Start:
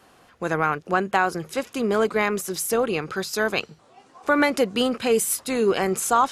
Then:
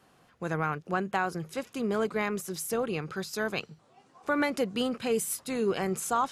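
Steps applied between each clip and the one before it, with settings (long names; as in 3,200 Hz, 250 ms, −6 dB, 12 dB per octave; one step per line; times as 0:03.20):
parametric band 150 Hz +7 dB 1 octave
level −8.5 dB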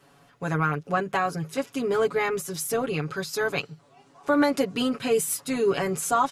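comb filter 7.1 ms, depth 97%
level +2 dB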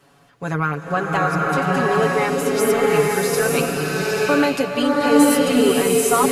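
slow-attack reverb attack 880 ms, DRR −4 dB
level +3 dB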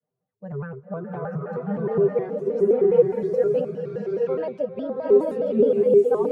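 spectral dynamics exaggerated over time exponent 1.5
pair of resonant band-passes 310 Hz, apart 1.1 octaves
pitch modulation by a square or saw wave square 4.8 Hz, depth 160 cents
level +5.5 dB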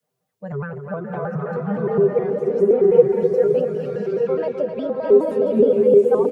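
repeating echo 257 ms, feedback 38%, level −9 dB
one half of a high-frequency compander encoder only
level +3 dB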